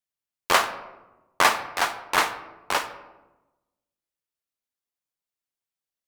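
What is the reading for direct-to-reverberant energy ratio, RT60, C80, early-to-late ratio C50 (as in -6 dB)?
8.5 dB, 1.1 s, 13.5 dB, 11.5 dB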